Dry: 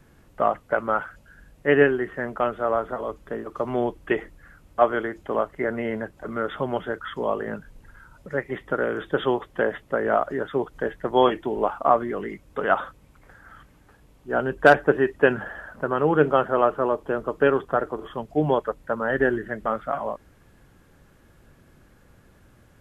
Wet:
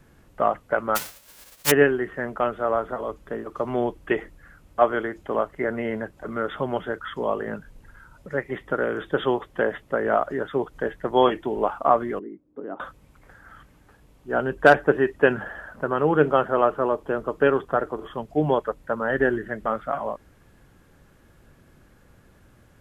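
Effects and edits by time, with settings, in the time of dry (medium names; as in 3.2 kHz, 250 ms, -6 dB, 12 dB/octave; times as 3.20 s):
0.95–1.70 s: formants flattened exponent 0.1
12.19–12.80 s: band-pass filter 300 Hz, Q 3.1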